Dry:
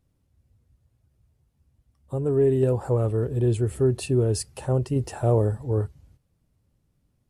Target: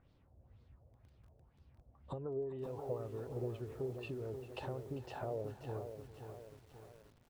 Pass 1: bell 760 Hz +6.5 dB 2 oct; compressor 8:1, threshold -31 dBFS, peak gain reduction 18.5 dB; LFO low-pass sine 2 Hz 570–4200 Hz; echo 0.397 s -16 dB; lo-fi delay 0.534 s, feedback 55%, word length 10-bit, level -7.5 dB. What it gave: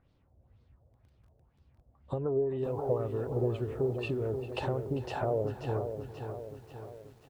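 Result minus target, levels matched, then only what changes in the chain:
compressor: peak gain reduction -10 dB
change: compressor 8:1, threshold -42.5 dBFS, peak gain reduction 28.5 dB

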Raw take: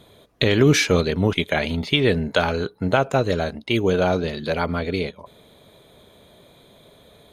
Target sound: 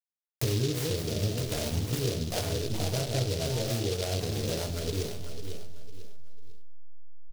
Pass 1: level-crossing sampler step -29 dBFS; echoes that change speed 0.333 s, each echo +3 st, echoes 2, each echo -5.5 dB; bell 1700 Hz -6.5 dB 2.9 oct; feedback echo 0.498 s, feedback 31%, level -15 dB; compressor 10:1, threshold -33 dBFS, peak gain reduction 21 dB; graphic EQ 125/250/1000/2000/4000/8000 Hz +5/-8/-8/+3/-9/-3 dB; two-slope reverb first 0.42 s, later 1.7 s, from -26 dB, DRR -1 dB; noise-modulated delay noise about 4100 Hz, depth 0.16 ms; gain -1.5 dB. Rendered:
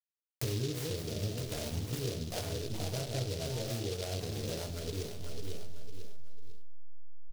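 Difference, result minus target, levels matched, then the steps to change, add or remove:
compressor: peak gain reduction +6.5 dB
change: compressor 10:1, threshold -26 dBFS, peak gain reduction 14.5 dB

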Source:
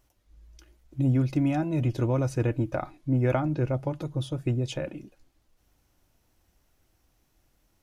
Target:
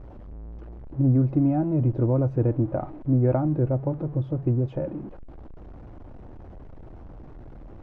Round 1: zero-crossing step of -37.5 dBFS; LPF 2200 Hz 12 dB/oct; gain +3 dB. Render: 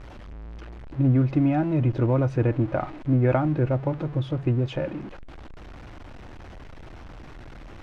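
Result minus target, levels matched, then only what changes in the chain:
2000 Hz band +13.0 dB
change: LPF 730 Hz 12 dB/oct

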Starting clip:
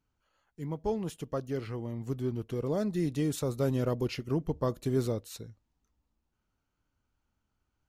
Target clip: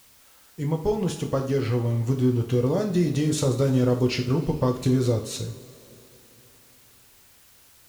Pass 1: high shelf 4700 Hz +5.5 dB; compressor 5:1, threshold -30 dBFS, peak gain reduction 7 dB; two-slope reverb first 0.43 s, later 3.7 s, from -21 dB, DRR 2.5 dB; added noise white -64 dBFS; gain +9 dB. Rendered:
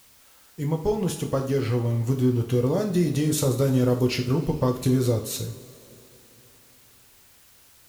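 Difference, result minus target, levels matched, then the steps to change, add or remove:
8000 Hz band +2.5 dB
add first: LPF 7800 Hz 12 dB/oct

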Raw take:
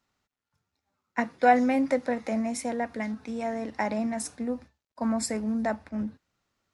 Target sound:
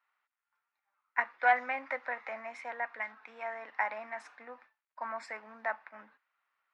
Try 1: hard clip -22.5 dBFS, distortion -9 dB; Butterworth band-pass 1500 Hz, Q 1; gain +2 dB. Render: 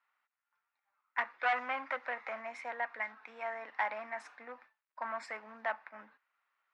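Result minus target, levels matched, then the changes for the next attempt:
hard clip: distortion +18 dB
change: hard clip -12 dBFS, distortion -27 dB

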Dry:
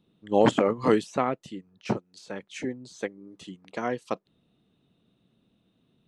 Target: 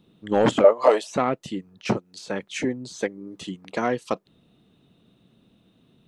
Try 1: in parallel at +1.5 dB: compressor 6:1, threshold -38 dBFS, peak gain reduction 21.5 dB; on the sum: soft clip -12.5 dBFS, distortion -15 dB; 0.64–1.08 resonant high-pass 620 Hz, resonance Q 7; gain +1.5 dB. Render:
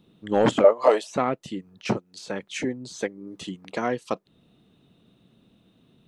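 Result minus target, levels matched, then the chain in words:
compressor: peak gain reduction +7.5 dB
in parallel at +1.5 dB: compressor 6:1, threshold -29 dBFS, peak gain reduction 14 dB; on the sum: soft clip -12.5 dBFS, distortion -14 dB; 0.64–1.08 resonant high-pass 620 Hz, resonance Q 7; gain +1.5 dB

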